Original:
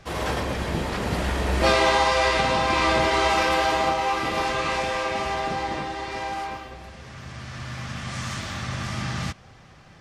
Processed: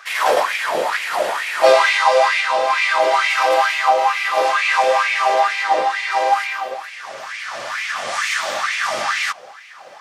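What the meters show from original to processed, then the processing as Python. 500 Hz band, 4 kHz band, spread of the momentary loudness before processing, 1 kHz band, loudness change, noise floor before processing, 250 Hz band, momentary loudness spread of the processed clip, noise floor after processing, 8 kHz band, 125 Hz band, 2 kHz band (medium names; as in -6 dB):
+7.5 dB, +4.5 dB, 16 LU, +7.5 dB, +7.0 dB, -49 dBFS, -10.5 dB, 12 LU, -40 dBFS, +6.0 dB, under -20 dB, +8.5 dB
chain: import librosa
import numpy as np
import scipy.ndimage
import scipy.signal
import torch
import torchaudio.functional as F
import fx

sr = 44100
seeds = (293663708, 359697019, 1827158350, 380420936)

y = fx.high_shelf(x, sr, hz=10000.0, db=7.5)
y = fx.rider(y, sr, range_db=5, speed_s=2.0)
y = fx.filter_lfo_highpass(y, sr, shape='sine', hz=2.2, low_hz=530.0, high_hz=2300.0, q=4.6)
y = y * 10.0 ** (2.5 / 20.0)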